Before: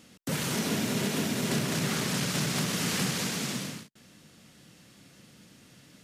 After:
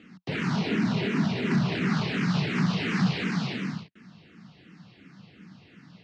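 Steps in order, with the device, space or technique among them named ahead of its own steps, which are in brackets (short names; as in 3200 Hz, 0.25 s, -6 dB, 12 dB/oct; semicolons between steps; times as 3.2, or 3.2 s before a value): barber-pole phaser into a guitar amplifier (endless phaser -2.8 Hz; soft clip -24.5 dBFS, distortion -20 dB; speaker cabinet 81–4000 Hz, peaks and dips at 180 Hz +6 dB, 550 Hz -9 dB, 3400 Hz -6 dB); gain +7 dB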